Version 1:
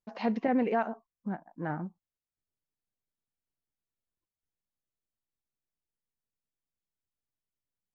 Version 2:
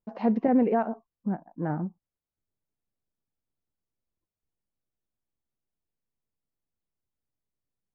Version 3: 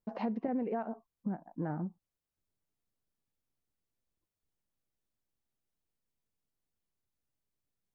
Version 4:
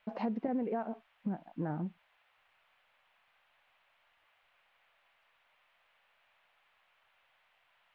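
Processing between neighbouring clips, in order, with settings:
tilt shelf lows +9 dB, about 1500 Hz; gain -2.5 dB
compressor 4:1, threshold -33 dBFS, peak gain reduction 13 dB
band noise 580–3000 Hz -72 dBFS

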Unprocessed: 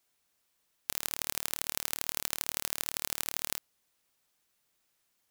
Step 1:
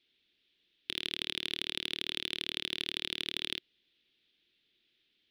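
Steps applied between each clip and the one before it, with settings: EQ curve 150 Hz 0 dB, 360 Hz +9 dB, 660 Hz -10 dB, 1100 Hz -13 dB, 1700 Hz 0 dB, 3500 Hz +14 dB, 7700 Hz -26 dB; soft clip -15.5 dBFS, distortion -16 dB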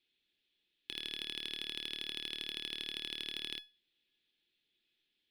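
resonator 840 Hz, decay 0.28 s, mix 80%; gain +6 dB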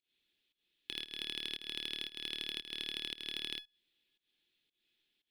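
pump 115 bpm, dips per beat 1, -20 dB, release 0.208 s; gain +1 dB

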